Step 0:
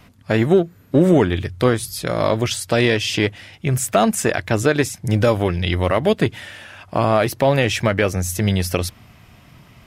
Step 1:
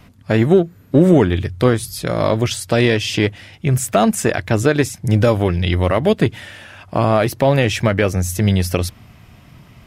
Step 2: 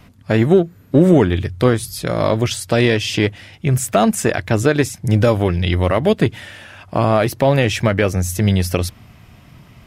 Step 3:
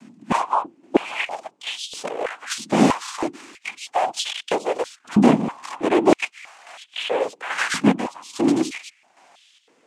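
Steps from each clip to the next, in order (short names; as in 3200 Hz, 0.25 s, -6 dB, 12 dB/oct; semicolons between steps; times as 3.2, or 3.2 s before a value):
low shelf 380 Hz +4 dB
nothing audible
noise vocoder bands 4; chopper 1.2 Hz, depth 60%, duty 50%; stepped high-pass 3.1 Hz 220–3300 Hz; gain -4.5 dB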